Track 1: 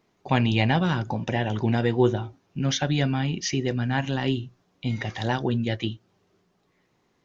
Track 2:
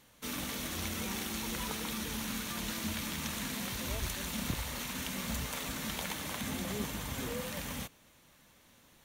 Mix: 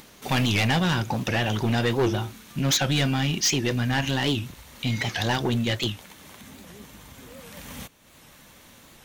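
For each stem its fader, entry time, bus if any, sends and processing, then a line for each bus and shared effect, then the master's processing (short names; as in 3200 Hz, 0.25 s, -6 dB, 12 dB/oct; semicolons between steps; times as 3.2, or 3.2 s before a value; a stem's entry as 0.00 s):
+2.5 dB, 0.00 s, no send, high shelf 2100 Hz +11.5 dB; soft clip -20 dBFS, distortion -9 dB
+3.0 dB, 0.00 s, no send, auto duck -12 dB, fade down 0.80 s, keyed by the first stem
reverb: off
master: upward compressor, threshold -41 dBFS; record warp 78 rpm, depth 160 cents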